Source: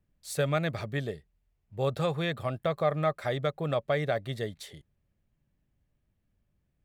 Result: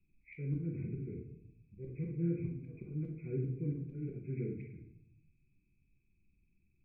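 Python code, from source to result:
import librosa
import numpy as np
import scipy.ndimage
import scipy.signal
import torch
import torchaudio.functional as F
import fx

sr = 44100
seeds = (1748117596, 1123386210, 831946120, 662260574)

y = fx.freq_compress(x, sr, knee_hz=1300.0, ratio=4.0)
y = fx.low_shelf(y, sr, hz=410.0, db=-11.0)
y = fx.auto_swell(y, sr, attack_ms=213.0)
y = scipy.signal.sosfilt(scipy.signal.cheby2(4, 40, [570.0, 1800.0], 'bandstop', fs=sr, output='sos'), y)
y = fx.room_shoebox(y, sr, seeds[0], volume_m3=140.0, walls='mixed', distance_m=0.92)
y = F.gain(torch.from_numpy(y), 5.0).numpy()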